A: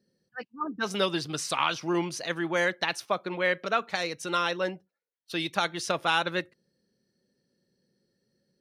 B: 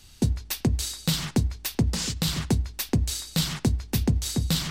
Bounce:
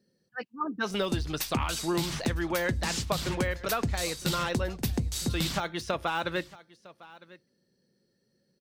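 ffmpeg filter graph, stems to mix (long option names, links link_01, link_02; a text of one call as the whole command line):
ffmpeg -i stem1.wav -i stem2.wav -filter_complex "[0:a]deesser=0.95,volume=1.5dB,asplit=2[link_01][link_02];[link_02]volume=-22.5dB[link_03];[1:a]adelay=900,volume=-2dB,asplit=2[link_04][link_05];[link_05]volume=-21.5dB[link_06];[link_03][link_06]amix=inputs=2:normalize=0,aecho=0:1:955:1[link_07];[link_01][link_04][link_07]amix=inputs=3:normalize=0,acompressor=threshold=-25dB:ratio=6" out.wav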